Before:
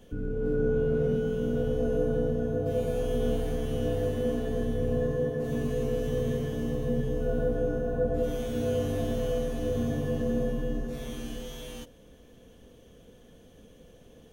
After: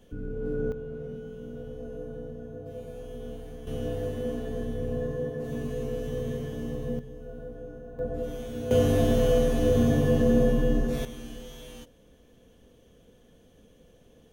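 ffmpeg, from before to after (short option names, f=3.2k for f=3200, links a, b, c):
-af "asetnsamples=n=441:p=0,asendcmd='0.72 volume volume -11.5dB;3.67 volume volume -3dB;6.99 volume volume -13dB;7.99 volume volume -4.5dB;8.71 volume volume 7dB;11.05 volume volume -3.5dB',volume=-3dB"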